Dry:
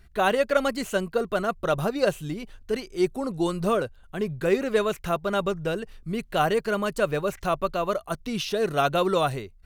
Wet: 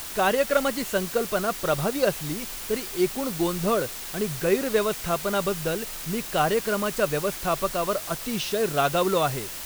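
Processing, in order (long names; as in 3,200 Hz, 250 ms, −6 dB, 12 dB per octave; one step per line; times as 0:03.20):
bit-depth reduction 6 bits, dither triangular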